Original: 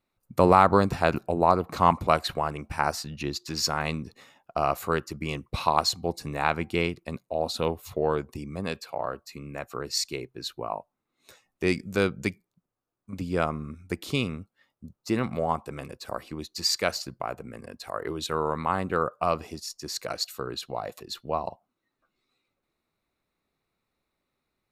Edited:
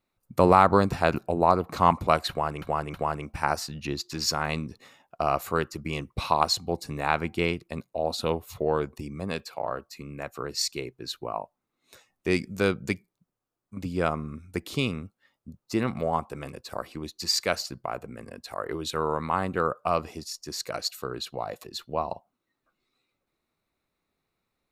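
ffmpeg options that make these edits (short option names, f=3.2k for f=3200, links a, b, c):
-filter_complex "[0:a]asplit=3[a][b][c];[a]atrim=end=2.622[d];[b]atrim=start=2.298:end=2.622[e];[c]atrim=start=2.298[f];[d][e]acrossfade=d=0.004:c1=hsin:c2=hsin[g];[g][f]acrossfade=d=0.004:c1=hsin:c2=hsin"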